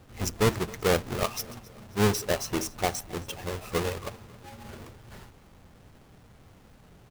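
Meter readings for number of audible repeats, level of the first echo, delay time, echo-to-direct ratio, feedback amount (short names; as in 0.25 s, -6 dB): 3, -21.5 dB, 0.269 s, -20.5 dB, 50%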